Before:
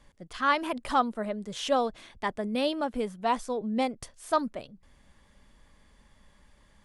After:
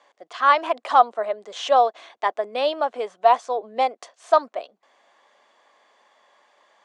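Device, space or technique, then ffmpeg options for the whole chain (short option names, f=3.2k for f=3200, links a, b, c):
phone speaker on a table: -af "highpass=f=400:w=0.5412,highpass=f=400:w=1.3066,equalizer=f=710:t=q:w=4:g=10,equalizer=f=1.1k:t=q:w=4:g=5,equalizer=f=5.1k:t=q:w=4:g=-4,lowpass=f=6.8k:w=0.5412,lowpass=f=6.8k:w=1.3066,volume=4.5dB"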